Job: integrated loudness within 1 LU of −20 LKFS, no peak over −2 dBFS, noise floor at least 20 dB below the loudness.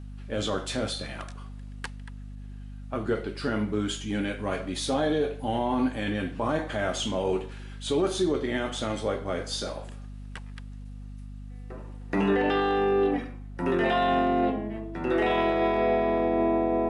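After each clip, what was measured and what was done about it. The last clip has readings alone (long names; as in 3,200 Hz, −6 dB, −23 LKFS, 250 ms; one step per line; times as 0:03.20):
mains hum 50 Hz; hum harmonics up to 250 Hz; level of the hum −38 dBFS; integrated loudness −27.5 LKFS; sample peak −13.5 dBFS; target loudness −20.0 LKFS
→ mains-hum notches 50/100/150/200/250 Hz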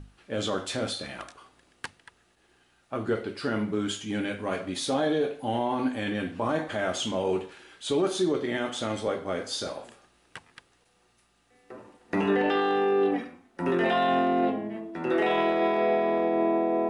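mains hum none found; integrated loudness −28.0 LKFS; sample peak −14.0 dBFS; target loudness −20.0 LKFS
→ level +8 dB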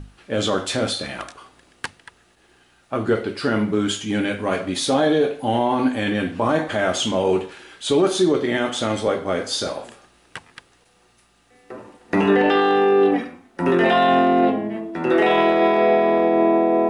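integrated loudness −20.0 LKFS; sample peak −6.0 dBFS; background noise floor −58 dBFS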